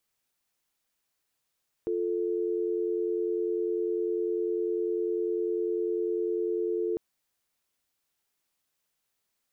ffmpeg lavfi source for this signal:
ffmpeg -f lavfi -i "aevalsrc='0.0355*(sin(2*PI*350*t)+sin(2*PI*440*t))':duration=5.1:sample_rate=44100" out.wav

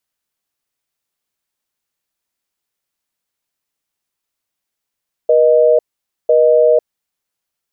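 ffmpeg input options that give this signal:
ffmpeg -f lavfi -i "aevalsrc='0.316*(sin(2*PI*480*t)+sin(2*PI*620*t))*clip(min(mod(t,1),0.5-mod(t,1))/0.005,0,1)':duration=1.84:sample_rate=44100" out.wav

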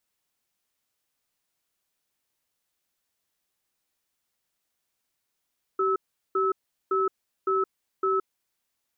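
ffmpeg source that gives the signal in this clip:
ffmpeg -f lavfi -i "aevalsrc='0.0631*(sin(2*PI*384*t)+sin(2*PI*1300*t))*clip(min(mod(t,0.56),0.17-mod(t,0.56))/0.005,0,1)':duration=2.49:sample_rate=44100" out.wav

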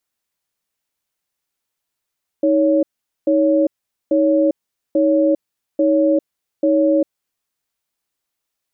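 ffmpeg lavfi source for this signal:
ffmpeg -f lavfi -i "aevalsrc='0.188*(sin(2*PI*315*t)+sin(2*PI*559*t))*clip(min(mod(t,0.84),0.4-mod(t,0.84))/0.005,0,1)':duration=4.76:sample_rate=44100" out.wav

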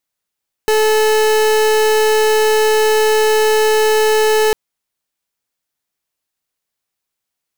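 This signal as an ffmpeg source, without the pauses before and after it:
ffmpeg -f lavfi -i "aevalsrc='0.237*(2*lt(mod(433*t,1),0.37)-1)':duration=3.85:sample_rate=44100" out.wav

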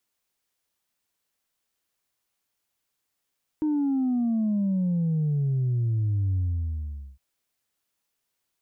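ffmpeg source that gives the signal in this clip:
ffmpeg -f lavfi -i "aevalsrc='0.0794*clip((3.56-t)/0.82,0,1)*tanh(1.06*sin(2*PI*310*3.56/log(65/310)*(exp(log(65/310)*t/3.56)-1)))/tanh(1.06)':duration=3.56:sample_rate=44100" out.wav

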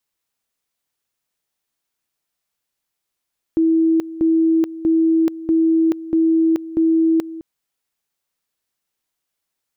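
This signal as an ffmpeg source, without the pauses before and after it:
ffmpeg -f lavfi -i "aevalsrc='pow(10,(-12-16*gte(mod(t,0.64),0.43))/20)*sin(2*PI*325*t)':duration=3.84:sample_rate=44100" out.wav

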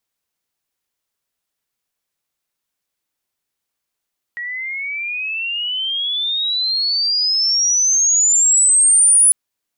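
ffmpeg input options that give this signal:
ffmpeg -f lavfi -i "aevalsrc='pow(10,(-23.5+16*t/4.95)/20)*sin(2*PI*1900*4.95/log(10000/1900)*(exp(log(10000/1900)*t/4.95)-1))':duration=4.95:sample_rate=44100" out.wav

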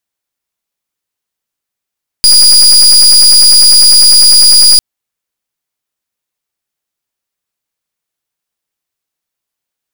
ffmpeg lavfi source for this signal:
ffmpeg -f lavfi -i "aevalsrc='0.668*(2*lt(mod(4870*t,1),0.33)-1)':duration=2.55:sample_rate=44100" out.wav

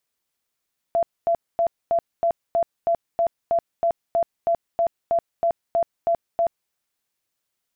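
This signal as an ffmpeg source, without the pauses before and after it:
ffmpeg -f lavfi -i "aevalsrc='0.15*sin(2*PI*677*mod(t,0.32))*lt(mod(t,0.32),53/677)':duration=5.76:sample_rate=44100" out.wav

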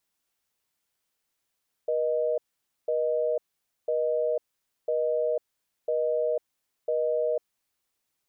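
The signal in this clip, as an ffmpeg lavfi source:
ffmpeg -f lavfi -i "aevalsrc='0.0501*(sin(2*PI*480*t)+sin(2*PI*620*t))*clip(min(mod(t,1),0.5-mod(t,1))/0.005,0,1)':duration=5.59:sample_rate=44100" out.wav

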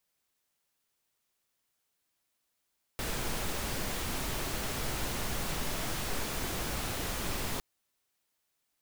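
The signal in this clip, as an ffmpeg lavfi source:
ffmpeg -f lavfi -i "anoisesrc=color=pink:amplitude=0.102:duration=4.61:sample_rate=44100:seed=1" out.wav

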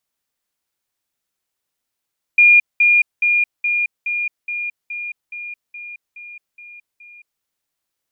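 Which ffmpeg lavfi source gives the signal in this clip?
ffmpeg -f lavfi -i "aevalsrc='pow(10,(-6.5-3*floor(t/0.42))/20)*sin(2*PI*2420*t)*clip(min(mod(t,0.42),0.22-mod(t,0.42))/0.005,0,1)':duration=5.04:sample_rate=44100" out.wav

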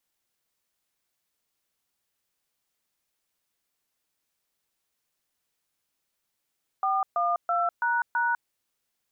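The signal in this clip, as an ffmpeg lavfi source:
ffmpeg -f lavfi -i "aevalsrc='0.0562*clip(min(mod(t,0.33),0.2-mod(t,0.33))/0.002,0,1)*(eq(floor(t/0.33),0)*(sin(2*PI*770*mod(t,0.33))+sin(2*PI*1209*mod(t,0.33)))+eq(floor(t/0.33),1)*(sin(2*PI*697*mod(t,0.33))+sin(2*PI*1209*mod(t,0.33)))+eq(floor(t/0.33),2)*(sin(2*PI*697*mod(t,0.33))+sin(2*PI*1336*mod(t,0.33)))+eq(floor(t/0.33),3)*(sin(2*PI*941*mod(t,0.33))+sin(2*PI*1477*mod(t,0.33)))+eq(floor(t/0.33),4)*(sin(2*PI*941*mod(t,0.33))+sin(2*PI*1477*mod(t,0.33))))':duration=1.65:sample_rate=44100" out.wav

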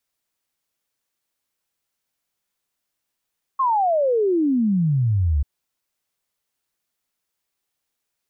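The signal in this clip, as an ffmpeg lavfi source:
ffmpeg -f lavfi -i "aevalsrc='0.158*clip(min(t,1.84-t)/0.01,0,1)*sin(2*PI*1100*1.84/log(67/1100)*(exp(log(67/1100)*t/1.84)-1))':duration=1.84:sample_rate=44100" out.wav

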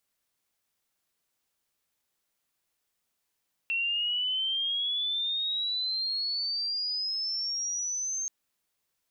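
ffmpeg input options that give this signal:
ffmpeg -f lavfi -i "aevalsrc='pow(10,(-26-3.5*t/4.58)/20)*sin(2*PI*2700*4.58/log(6400/2700)*(exp(log(6400/2700)*t/4.58)-1))':duration=4.58:sample_rate=44100" out.wav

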